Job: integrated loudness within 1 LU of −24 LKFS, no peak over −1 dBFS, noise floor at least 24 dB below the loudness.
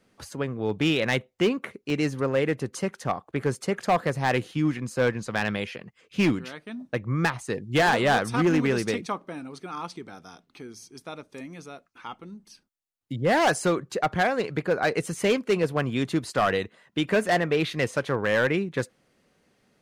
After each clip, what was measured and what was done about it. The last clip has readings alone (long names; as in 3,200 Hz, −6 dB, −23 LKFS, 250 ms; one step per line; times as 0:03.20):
share of clipped samples 1.0%; peaks flattened at −16.0 dBFS; number of dropouts 1; longest dropout 1.9 ms; integrated loudness −26.0 LKFS; sample peak −16.0 dBFS; target loudness −24.0 LKFS
→ clipped peaks rebuilt −16 dBFS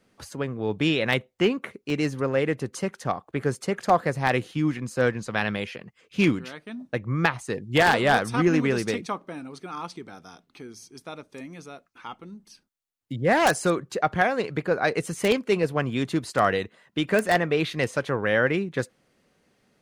share of clipped samples 0.0%; number of dropouts 1; longest dropout 1.9 ms
→ repair the gap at 0:01.90, 1.9 ms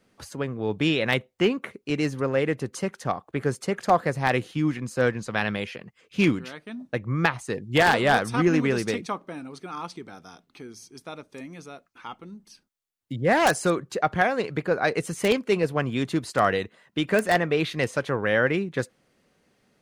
number of dropouts 0; integrated loudness −25.0 LKFS; sample peak −7.0 dBFS; target loudness −24.0 LKFS
→ level +1 dB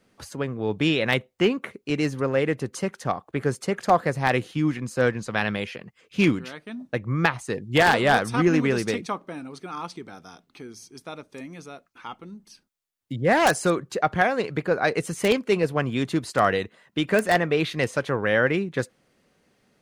integrated loudness −24.0 LKFS; sample peak −6.0 dBFS; background noise floor −68 dBFS